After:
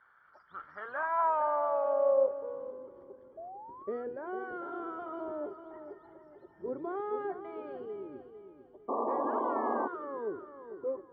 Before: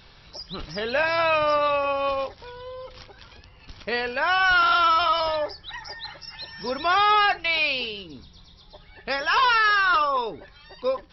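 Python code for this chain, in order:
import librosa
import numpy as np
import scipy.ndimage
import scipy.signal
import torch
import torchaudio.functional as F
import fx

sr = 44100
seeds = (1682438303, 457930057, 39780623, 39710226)

p1 = fx.octave_divider(x, sr, octaves=1, level_db=-3.0)
p2 = p1 + fx.echo_thinned(p1, sr, ms=201, feedback_pct=73, hz=790.0, wet_db=-22.5, dry=0)
p3 = fx.leveller(p2, sr, passes=1)
p4 = scipy.signal.savgol_filter(p3, 41, 4, mode='constant')
p5 = fx.echo_feedback(p4, sr, ms=451, feedback_pct=35, wet_db=-10.0)
p6 = fx.spec_paint(p5, sr, seeds[0], shape='rise', start_s=3.37, length_s=0.67, low_hz=640.0, high_hz=1400.0, level_db=-26.0)
p7 = fx.filter_sweep_bandpass(p6, sr, from_hz=1400.0, to_hz=370.0, start_s=0.69, end_s=2.84, q=5.8)
y = fx.spec_paint(p7, sr, seeds[1], shape='noise', start_s=8.88, length_s=1.0, low_hz=220.0, high_hz=1200.0, level_db=-32.0)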